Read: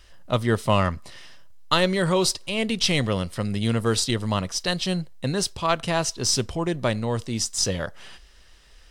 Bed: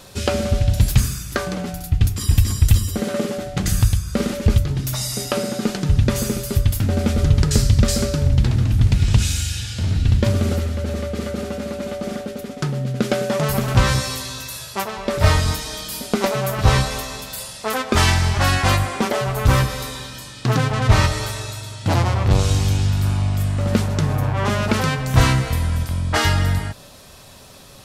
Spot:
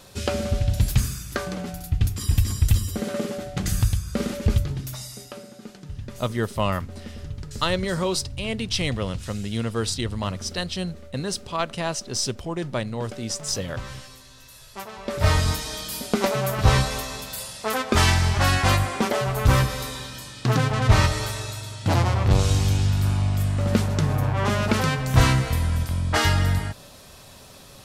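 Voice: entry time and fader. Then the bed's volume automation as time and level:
5.90 s, −3.5 dB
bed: 0:04.64 −5 dB
0:05.48 −19.5 dB
0:14.30 −19.5 dB
0:15.40 −2.5 dB

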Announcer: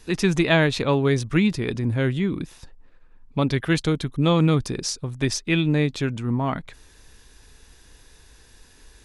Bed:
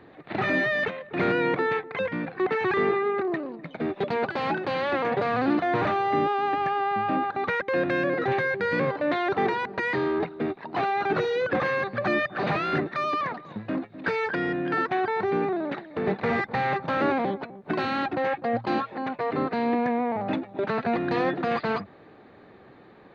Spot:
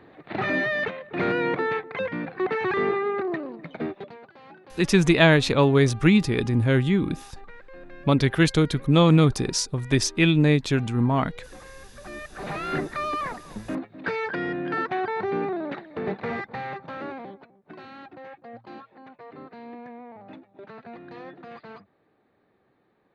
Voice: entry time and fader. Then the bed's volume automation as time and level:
4.70 s, +2.0 dB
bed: 0:03.84 −0.5 dB
0:04.21 −21 dB
0:11.84 −21 dB
0:12.74 −1.5 dB
0:15.90 −1.5 dB
0:17.69 −16.5 dB

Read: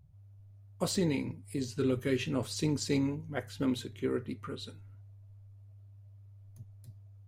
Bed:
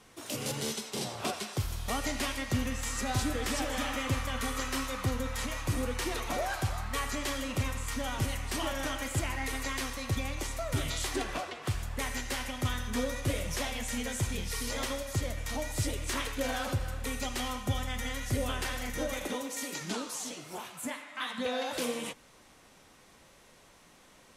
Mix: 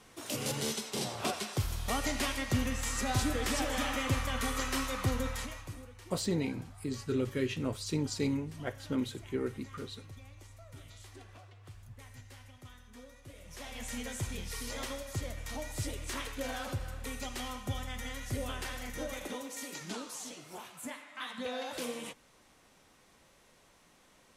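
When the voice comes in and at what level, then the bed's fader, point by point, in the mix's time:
5.30 s, −2.0 dB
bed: 0:05.28 0 dB
0:05.93 −20.5 dB
0:13.33 −20.5 dB
0:13.84 −5 dB

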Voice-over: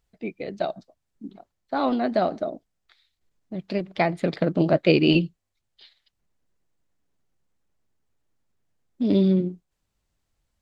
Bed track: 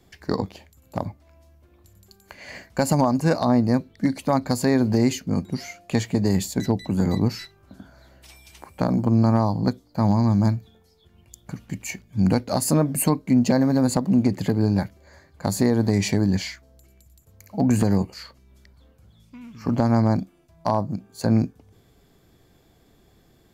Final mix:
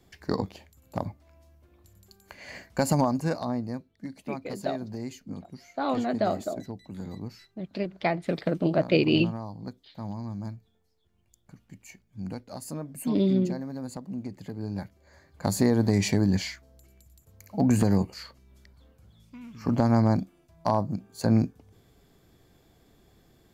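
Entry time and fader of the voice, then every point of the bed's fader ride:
4.05 s, −4.0 dB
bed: 0:02.98 −3.5 dB
0:03.90 −16.5 dB
0:14.46 −16.5 dB
0:15.39 −2.5 dB

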